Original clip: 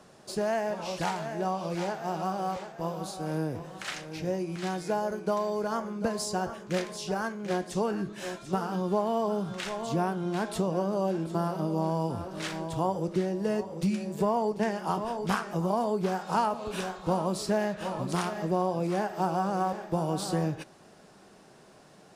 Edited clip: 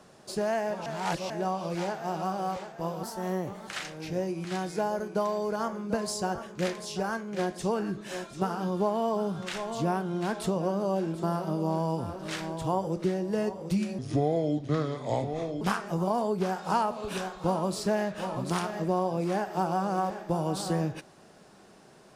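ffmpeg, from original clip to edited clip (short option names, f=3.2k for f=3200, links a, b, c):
-filter_complex "[0:a]asplit=7[a][b][c][d][e][f][g];[a]atrim=end=0.862[h];[b]atrim=start=0.858:end=1.302,asetpts=PTS-STARTPTS,areverse[i];[c]atrim=start=1.298:end=3.034[j];[d]atrim=start=3.03:end=3.79,asetpts=PTS-STARTPTS,asetrate=52038,aresample=44100,atrim=end_sample=28403,asetpts=PTS-STARTPTS[k];[e]atrim=start=3.786:end=14.104[l];[f]atrim=start=14.1:end=15.24,asetpts=PTS-STARTPTS,asetrate=30870,aresample=44100[m];[g]atrim=start=15.236[n];[h][i]acrossfade=d=0.004:c1=hsin:c2=hsin[o];[o][j]acrossfade=d=0.004:c1=hsin:c2=hsin[p];[p][k]acrossfade=d=0.004:c1=hsin:c2=hsin[q];[q][l]acrossfade=d=0.004:c1=hsin:c2=hsin[r];[r][m]acrossfade=d=0.004:c1=hsin:c2=hsin[s];[s][n]acrossfade=d=0.004:c1=hsin:c2=hsin"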